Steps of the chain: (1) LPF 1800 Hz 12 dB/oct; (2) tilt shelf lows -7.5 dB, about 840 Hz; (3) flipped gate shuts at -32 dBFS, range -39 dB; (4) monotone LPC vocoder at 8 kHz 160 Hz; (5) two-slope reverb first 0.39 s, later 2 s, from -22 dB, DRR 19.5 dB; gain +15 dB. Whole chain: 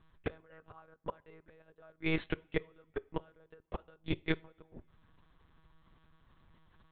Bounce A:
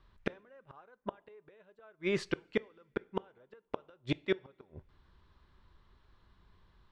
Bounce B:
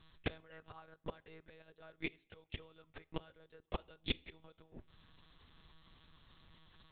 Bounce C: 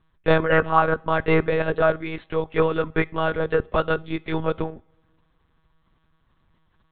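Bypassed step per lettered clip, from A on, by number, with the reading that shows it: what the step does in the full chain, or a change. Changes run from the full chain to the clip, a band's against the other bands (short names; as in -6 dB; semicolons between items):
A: 4, 500 Hz band +4.0 dB; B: 1, 4 kHz band +9.0 dB; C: 3, momentary loudness spread change -13 LU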